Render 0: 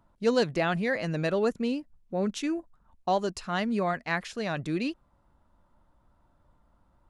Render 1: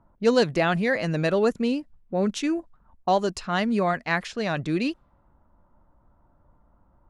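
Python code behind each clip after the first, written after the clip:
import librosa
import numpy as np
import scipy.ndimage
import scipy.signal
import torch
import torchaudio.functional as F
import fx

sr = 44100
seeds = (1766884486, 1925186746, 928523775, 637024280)

y = fx.env_lowpass(x, sr, base_hz=1300.0, full_db=-26.5)
y = y * librosa.db_to_amplitude(4.5)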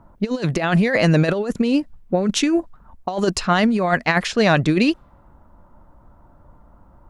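y = fx.over_compress(x, sr, threshold_db=-25.0, ratio=-0.5)
y = y * librosa.db_to_amplitude(8.5)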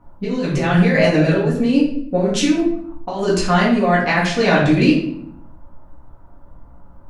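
y = fx.room_shoebox(x, sr, seeds[0], volume_m3=120.0, walls='mixed', distance_m=1.9)
y = y * librosa.db_to_amplitude(-6.0)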